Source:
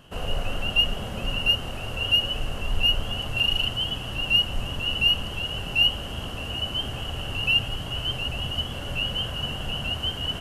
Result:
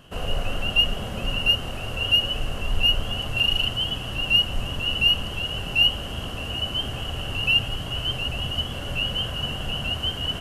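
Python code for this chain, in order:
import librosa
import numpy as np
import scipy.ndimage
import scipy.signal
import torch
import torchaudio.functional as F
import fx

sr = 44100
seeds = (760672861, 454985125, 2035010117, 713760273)

y = fx.notch(x, sr, hz=880.0, q=17.0)
y = F.gain(torch.from_numpy(y), 1.5).numpy()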